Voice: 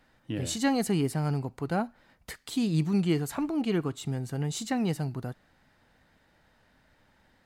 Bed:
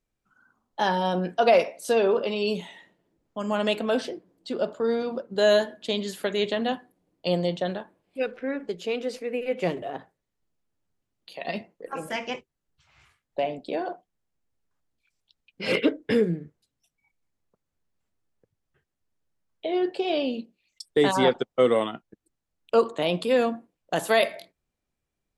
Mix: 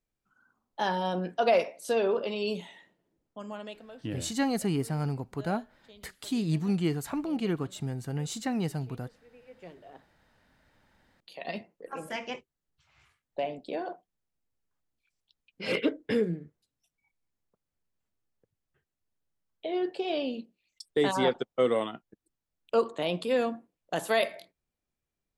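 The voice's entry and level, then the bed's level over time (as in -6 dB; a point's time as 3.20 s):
3.75 s, -2.0 dB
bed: 3.20 s -5 dB
4.05 s -27 dB
9.34 s -27 dB
10.55 s -5 dB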